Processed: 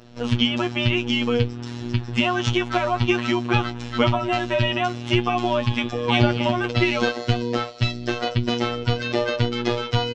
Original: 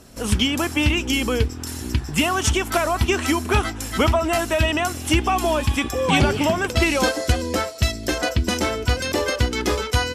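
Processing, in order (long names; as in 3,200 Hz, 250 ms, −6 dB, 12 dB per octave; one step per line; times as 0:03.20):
low-pass filter 4,600 Hz 24 dB per octave
phases set to zero 120 Hz
double-tracking delay 17 ms −11 dB
level +1 dB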